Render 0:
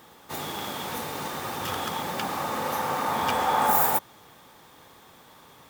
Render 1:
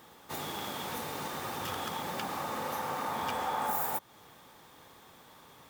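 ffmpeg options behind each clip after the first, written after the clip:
ffmpeg -i in.wav -af "acompressor=threshold=-31dB:ratio=2,volume=-3.5dB" out.wav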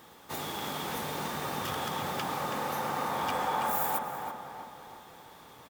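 ffmpeg -i in.wav -filter_complex "[0:a]asplit=2[link_01][link_02];[link_02]adelay=327,lowpass=frequency=2900:poles=1,volume=-4.5dB,asplit=2[link_03][link_04];[link_04]adelay=327,lowpass=frequency=2900:poles=1,volume=0.52,asplit=2[link_05][link_06];[link_06]adelay=327,lowpass=frequency=2900:poles=1,volume=0.52,asplit=2[link_07][link_08];[link_08]adelay=327,lowpass=frequency=2900:poles=1,volume=0.52,asplit=2[link_09][link_10];[link_10]adelay=327,lowpass=frequency=2900:poles=1,volume=0.52,asplit=2[link_11][link_12];[link_12]adelay=327,lowpass=frequency=2900:poles=1,volume=0.52,asplit=2[link_13][link_14];[link_14]adelay=327,lowpass=frequency=2900:poles=1,volume=0.52[link_15];[link_01][link_03][link_05][link_07][link_09][link_11][link_13][link_15]amix=inputs=8:normalize=0,volume=1.5dB" out.wav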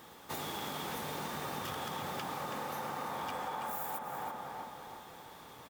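ffmpeg -i in.wav -af "acompressor=threshold=-36dB:ratio=6" out.wav

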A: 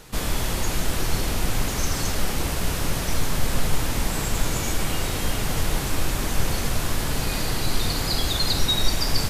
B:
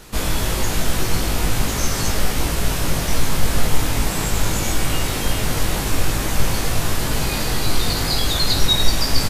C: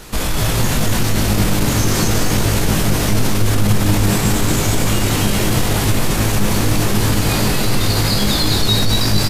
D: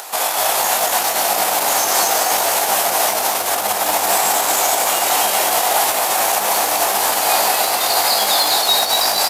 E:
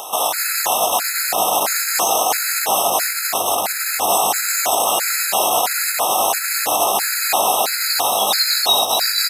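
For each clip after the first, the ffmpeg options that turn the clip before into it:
ffmpeg -i in.wav -filter_complex "[0:a]asplit=2[link_01][link_02];[link_02]adelay=19,volume=-3dB[link_03];[link_01][link_03]amix=inputs=2:normalize=0,volume=2.5dB" out.wav
ffmpeg -i in.wav -filter_complex "[0:a]acontrast=73,alimiter=limit=-9dB:level=0:latency=1,asplit=8[link_01][link_02][link_03][link_04][link_05][link_06][link_07][link_08];[link_02]adelay=231,afreqshift=100,volume=-4dB[link_09];[link_03]adelay=462,afreqshift=200,volume=-9.2dB[link_10];[link_04]adelay=693,afreqshift=300,volume=-14.4dB[link_11];[link_05]adelay=924,afreqshift=400,volume=-19.6dB[link_12];[link_06]adelay=1155,afreqshift=500,volume=-24.8dB[link_13];[link_07]adelay=1386,afreqshift=600,volume=-30dB[link_14];[link_08]adelay=1617,afreqshift=700,volume=-35.2dB[link_15];[link_01][link_09][link_10][link_11][link_12][link_13][link_14][link_15]amix=inputs=8:normalize=0,volume=-1dB" out.wav
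ffmpeg -i in.wav -af "highshelf=frequency=8400:gain=11,acompressor=mode=upward:threshold=-29dB:ratio=2.5,highpass=frequency=740:width_type=q:width=4.1" out.wav
ffmpeg -i in.wav -filter_complex "[0:a]asplit=2[link_01][link_02];[link_02]alimiter=limit=-11.5dB:level=0:latency=1:release=193,volume=-1dB[link_03];[link_01][link_03]amix=inputs=2:normalize=0,afftfilt=real='re*gt(sin(2*PI*1.5*pts/sr)*(1-2*mod(floor(b*sr/1024/1300),2)),0)':imag='im*gt(sin(2*PI*1.5*pts/sr)*(1-2*mod(floor(b*sr/1024/1300),2)),0)':win_size=1024:overlap=0.75,volume=-2dB" out.wav

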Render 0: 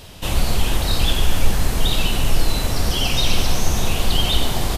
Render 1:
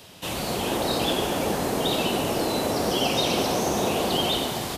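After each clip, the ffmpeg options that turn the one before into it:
ffmpeg -i in.wav -filter_complex "[0:a]highpass=150,acrossover=split=250|860|6300[link_01][link_02][link_03][link_04];[link_02]dynaudnorm=framelen=120:gausssize=9:maxgain=11.5dB[link_05];[link_01][link_05][link_03][link_04]amix=inputs=4:normalize=0,volume=-4.5dB" out.wav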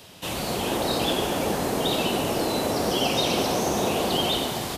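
ffmpeg -i in.wav -af anull out.wav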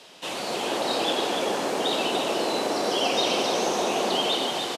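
ffmpeg -i in.wav -af "highpass=320,lowpass=7700,aecho=1:1:293:0.473" out.wav

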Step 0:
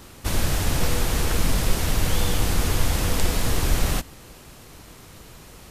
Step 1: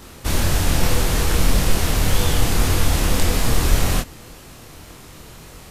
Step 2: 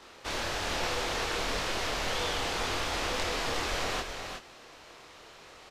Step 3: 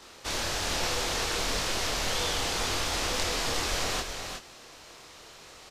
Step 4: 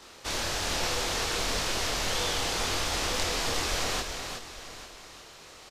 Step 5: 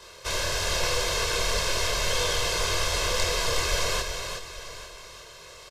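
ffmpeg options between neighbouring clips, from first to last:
ffmpeg -i in.wav -af "flanger=delay=22.5:depth=5:speed=1.8,volume=7dB" out.wav
ffmpeg -i in.wav -filter_complex "[0:a]acrossover=split=370 6100:gain=0.126 1 0.1[link_01][link_02][link_03];[link_01][link_02][link_03]amix=inputs=3:normalize=0,asplit=2[link_04][link_05];[link_05]aecho=0:1:364:0.473[link_06];[link_04][link_06]amix=inputs=2:normalize=0,volume=-6dB" out.wav
ffmpeg -i in.wav -af "bass=frequency=250:gain=3,treble=frequency=4000:gain=8" out.wav
ffmpeg -i in.wav -af "aecho=1:1:845:0.178" out.wav
ffmpeg -i in.wav -af "aecho=1:1:1.9:0.98" out.wav

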